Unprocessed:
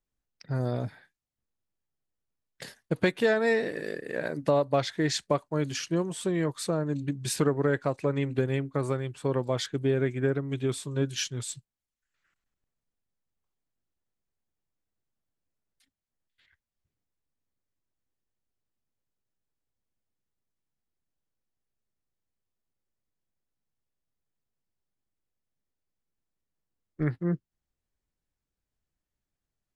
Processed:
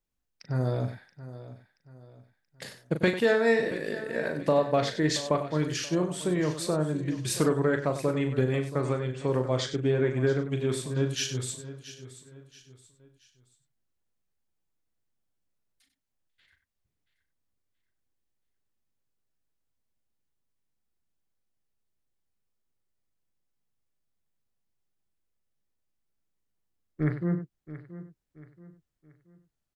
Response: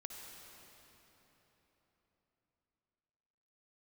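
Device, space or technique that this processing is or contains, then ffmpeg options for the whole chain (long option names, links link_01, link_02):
slapback doubling: -filter_complex "[0:a]asettb=1/sr,asplit=3[link_01][link_02][link_03];[link_01]atrim=end=8.674[link_04];[link_02]atrim=start=8.67:end=10.13,asetpts=PTS-STARTPTS,afade=type=in:duration=0.004:curve=qsin,afade=type=out:start_time=1.456:duration=0.004:curve=qsin,lowpass=frequency=7700:width=0.5412,lowpass=frequency=7700:width=1.3066[link_05];[link_03]atrim=start=10.126[link_06];[link_04][link_05]acrossfade=duration=0.004:curve1=hsin:curve2=qsin[link_07];[link_07][link_06]acrossfade=duration=0.004:curve1=qsin:curve2=hsin,asplit=3[link_08][link_09][link_10];[link_09]adelay=39,volume=-8dB[link_11];[link_10]adelay=96,volume=-11dB[link_12];[link_08][link_11][link_12]amix=inputs=3:normalize=0,aecho=1:1:678|1356|2034:0.178|0.0676|0.0257"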